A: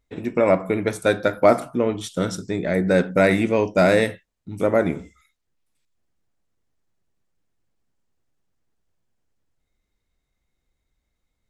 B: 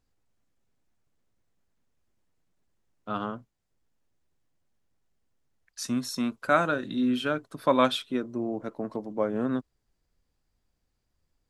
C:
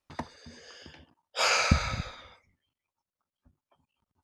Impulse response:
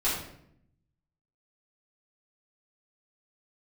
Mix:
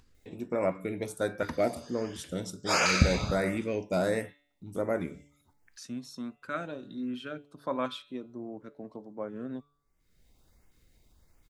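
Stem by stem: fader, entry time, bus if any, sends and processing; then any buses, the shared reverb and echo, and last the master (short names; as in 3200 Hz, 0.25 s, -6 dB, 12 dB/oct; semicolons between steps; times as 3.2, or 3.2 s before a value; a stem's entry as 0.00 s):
-11.0 dB, 0.15 s, no send, high shelf 9400 Hz +8.5 dB
-9.5 dB, 0.00 s, no send, high shelf 9900 Hz -11 dB
+1.0 dB, 1.30 s, no send, dry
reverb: off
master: de-hum 144.3 Hz, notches 29; LFO notch saw up 1.4 Hz 590–4500 Hz; upward compressor, threshold -45 dBFS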